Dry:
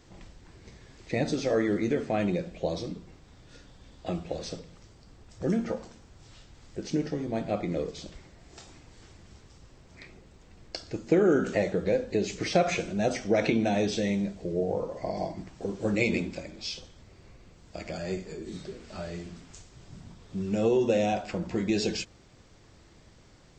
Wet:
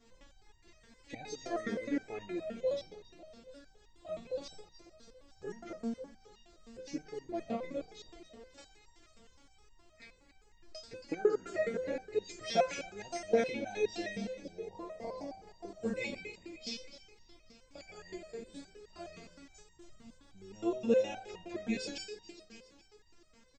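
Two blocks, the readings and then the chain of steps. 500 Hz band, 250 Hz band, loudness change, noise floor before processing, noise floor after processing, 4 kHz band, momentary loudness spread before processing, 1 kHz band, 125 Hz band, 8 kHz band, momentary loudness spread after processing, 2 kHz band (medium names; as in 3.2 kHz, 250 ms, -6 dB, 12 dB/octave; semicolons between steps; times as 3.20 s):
-7.0 dB, -11.0 dB, -8.5 dB, -56 dBFS, -65 dBFS, -7.5 dB, 16 LU, -7.5 dB, -18.5 dB, -8.0 dB, 23 LU, -8.0 dB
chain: feedback delay 276 ms, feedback 52%, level -11.5 dB; resonator arpeggio 9.6 Hz 230–940 Hz; trim +7 dB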